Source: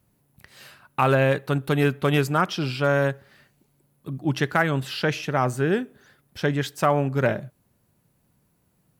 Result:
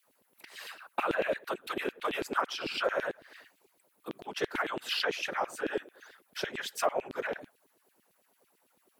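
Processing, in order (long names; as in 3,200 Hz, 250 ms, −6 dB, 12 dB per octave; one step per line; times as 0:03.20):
downward compressor 6 to 1, threshold −29 dBFS, peak gain reduction 13 dB
random phases in short frames
auto-filter high-pass saw down 9 Hz 300–3,300 Hz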